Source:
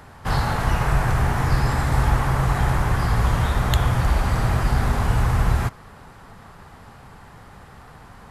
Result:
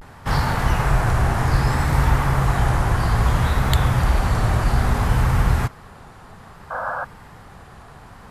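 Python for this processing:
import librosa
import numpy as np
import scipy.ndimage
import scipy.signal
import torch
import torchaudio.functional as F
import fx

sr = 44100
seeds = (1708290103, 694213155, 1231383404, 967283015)

y = fx.vibrato(x, sr, rate_hz=0.61, depth_cents=92.0)
y = fx.spec_paint(y, sr, seeds[0], shape='noise', start_s=6.7, length_s=0.35, low_hz=490.0, high_hz=1700.0, level_db=-28.0)
y = F.gain(torch.from_numpy(y), 1.5).numpy()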